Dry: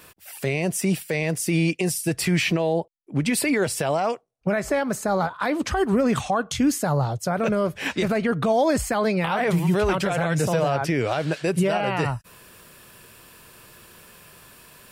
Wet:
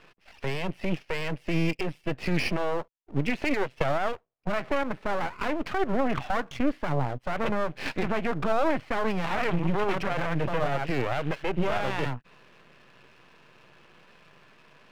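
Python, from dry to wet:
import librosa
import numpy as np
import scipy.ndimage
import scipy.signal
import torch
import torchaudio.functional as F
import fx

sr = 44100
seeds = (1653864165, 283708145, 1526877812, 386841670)

y = fx.transient(x, sr, attack_db=8, sustain_db=-10, at=(3.5, 4.03))
y = scipy.signal.sosfilt(scipy.signal.ellip(3, 1.0, 40, [130.0, 2800.0], 'bandpass', fs=sr, output='sos'), y)
y = np.maximum(y, 0.0)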